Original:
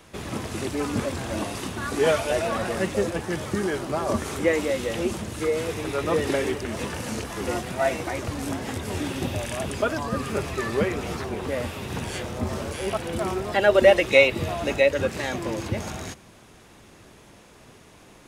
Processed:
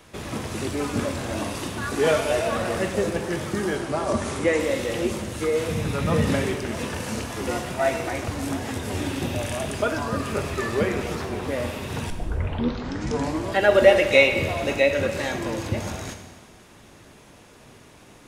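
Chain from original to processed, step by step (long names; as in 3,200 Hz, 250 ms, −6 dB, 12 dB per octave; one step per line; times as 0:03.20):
0:03.75–0:04.60: Butterworth low-pass 11,000 Hz 72 dB per octave
0:05.69–0:06.42: low shelf with overshoot 260 Hz +7 dB, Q 3
0:12.10: tape start 1.50 s
dense smooth reverb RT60 1.4 s, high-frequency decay 1×, DRR 5.5 dB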